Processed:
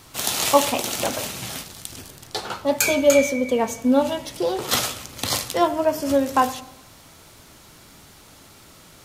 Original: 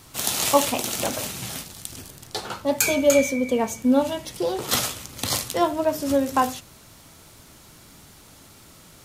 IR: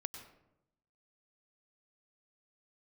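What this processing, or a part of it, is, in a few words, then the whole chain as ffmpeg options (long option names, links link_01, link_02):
filtered reverb send: -filter_complex "[0:a]asettb=1/sr,asplit=3[link_01][link_02][link_03];[link_01]atrim=end=5.674[link_04];[link_02]atrim=start=5.67:end=6.1,asetpts=PTS-STARTPTS,afade=type=in:duration=0.004:curve=qsin,afade=type=out:start_time=0.426:duration=0.004:curve=qsin,bandreject=frequency=3800:width=7.5[link_05];[link_03]atrim=start=6.096[link_06];[link_04][link_05]acrossfade=duration=0.004:curve1=hsin:curve2=qsin[link_07];[link_07][link_06]acrossfade=duration=0.004:curve1=qsin:curve2=hsin,asplit=2[link_08][link_09];[link_09]highpass=260,lowpass=6900[link_10];[1:a]atrim=start_sample=2205[link_11];[link_10][link_11]afir=irnorm=-1:irlink=0,volume=-7dB[link_12];[link_08][link_12]amix=inputs=2:normalize=0"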